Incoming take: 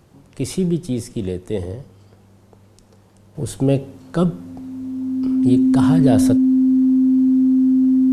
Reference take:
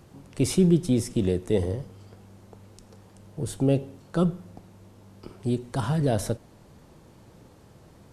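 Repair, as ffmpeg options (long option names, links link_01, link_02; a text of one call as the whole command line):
ffmpeg -i in.wav -af "bandreject=frequency=260:width=30,asetnsamples=nb_out_samples=441:pad=0,asendcmd='3.35 volume volume -5.5dB',volume=0dB" out.wav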